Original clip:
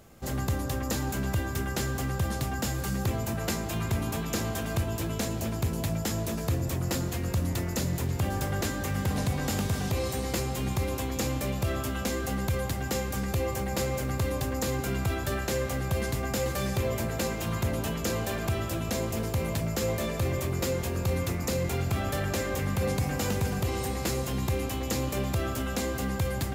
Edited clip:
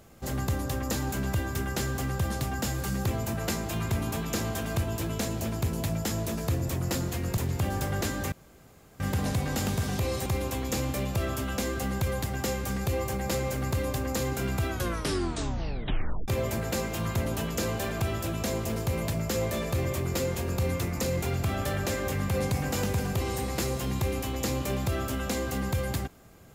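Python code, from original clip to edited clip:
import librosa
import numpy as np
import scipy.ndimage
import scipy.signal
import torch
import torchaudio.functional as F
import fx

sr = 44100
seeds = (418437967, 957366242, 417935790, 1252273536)

y = fx.edit(x, sr, fx.cut(start_s=7.37, length_s=0.6),
    fx.insert_room_tone(at_s=8.92, length_s=0.68),
    fx.cut(start_s=10.18, length_s=0.55),
    fx.tape_stop(start_s=15.17, length_s=1.58), tone=tone)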